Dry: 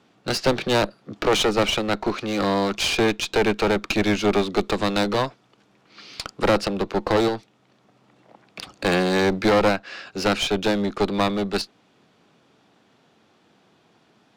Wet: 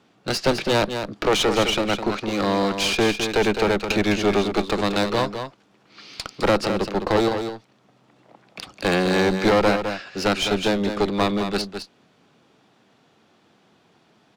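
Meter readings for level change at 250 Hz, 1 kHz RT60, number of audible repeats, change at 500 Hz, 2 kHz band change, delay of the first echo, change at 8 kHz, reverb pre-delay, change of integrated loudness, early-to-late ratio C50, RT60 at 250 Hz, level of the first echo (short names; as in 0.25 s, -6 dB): +0.5 dB, none, 1, +0.5 dB, +0.5 dB, 0.209 s, +0.5 dB, none, +0.5 dB, none, none, -8.0 dB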